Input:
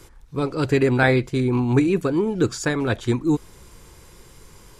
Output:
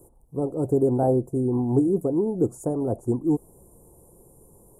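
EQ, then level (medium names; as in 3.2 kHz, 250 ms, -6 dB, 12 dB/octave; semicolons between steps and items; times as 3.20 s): elliptic band-stop 740–9300 Hz, stop band 60 dB; bass shelf 100 Hz -12 dB; 0.0 dB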